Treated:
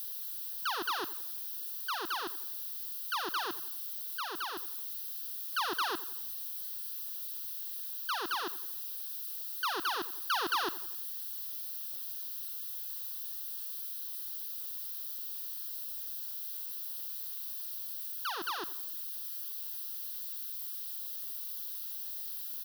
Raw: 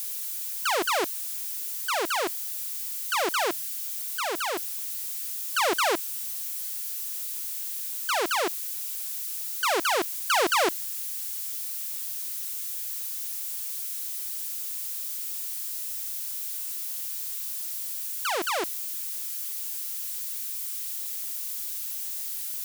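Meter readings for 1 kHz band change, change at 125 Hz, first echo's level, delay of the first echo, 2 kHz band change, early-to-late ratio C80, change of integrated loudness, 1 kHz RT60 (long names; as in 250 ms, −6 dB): −7.5 dB, can't be measured, −17.0 dB, 88 ms, −8.5 dB, no reverb audible, −7.5 dB, no reverb audible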